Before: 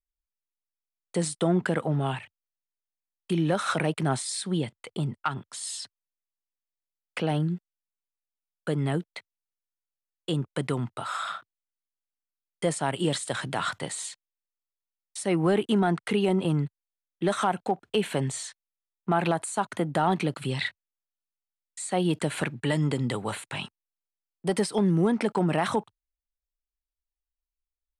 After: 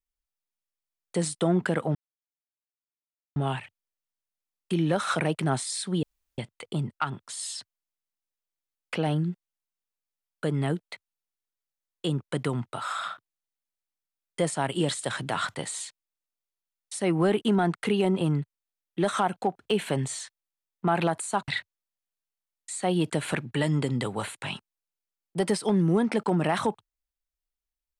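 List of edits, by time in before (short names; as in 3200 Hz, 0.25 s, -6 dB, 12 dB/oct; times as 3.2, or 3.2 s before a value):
1.95 insert silence 1.41 s
4.62 insert room tone 0.35 s
19.72–20.57 cut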